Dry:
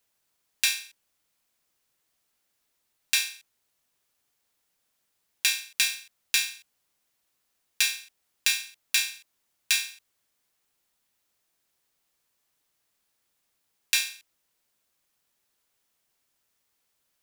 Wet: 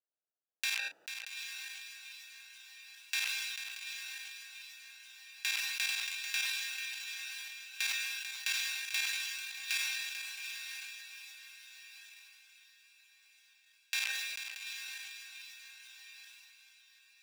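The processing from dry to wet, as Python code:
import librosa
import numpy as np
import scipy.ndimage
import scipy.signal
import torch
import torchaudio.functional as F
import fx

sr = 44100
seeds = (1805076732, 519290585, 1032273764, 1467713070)

y = fx.wiener(x, sr, points=41)
y = fx.high_shelf(y, sr, hz=2900.0, db=-10.0)
y = fx.echo_diffused(y, sr, ms=853, feedback_pct=43, wet_db=-4)
y = fx.level_steps(y, sr, step_db=11)
y = scipy.signal.sosfilt(scipy.signal.butter(2, 690.0, 'highpass', fs=sr, output='sos'), y)
y = fx.peak_eq(y, sr, hz=9700.0, db=-3.0, octaves=0.51)
y = fx.echo_swing(y, sr, ms=737, ratio=1.5, feedback_pct=31, wet_db=-9)
y = fx.sustainer(y, sr, db_per_s=23.0)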